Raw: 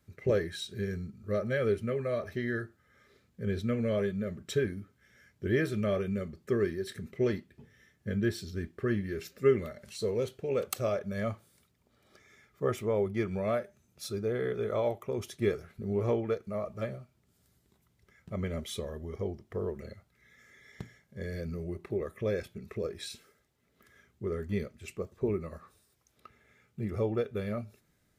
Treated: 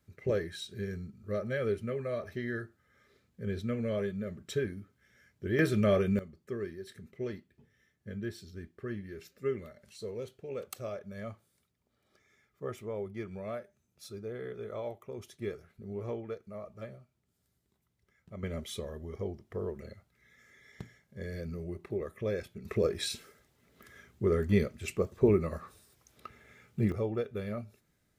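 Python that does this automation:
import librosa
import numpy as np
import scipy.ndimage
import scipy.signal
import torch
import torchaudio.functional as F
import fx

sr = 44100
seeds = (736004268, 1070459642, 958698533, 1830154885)

y = fx.gain(x, sr, db=fx.steps((0.0, -3.0), (5.59, 4.0), (6.19, -8.5), (18.43, -2.0), (22.65, 6.5), (26.92, -2.5)))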